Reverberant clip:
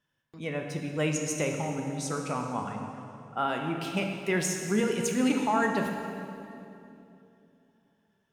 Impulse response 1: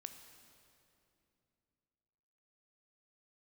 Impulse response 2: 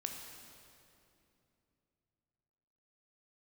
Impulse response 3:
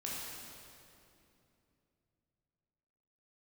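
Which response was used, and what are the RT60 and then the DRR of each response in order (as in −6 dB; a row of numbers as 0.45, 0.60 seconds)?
2; 2.8, 2.8, 2.8 seconds; 7.0, 2.0, −6.0 decibels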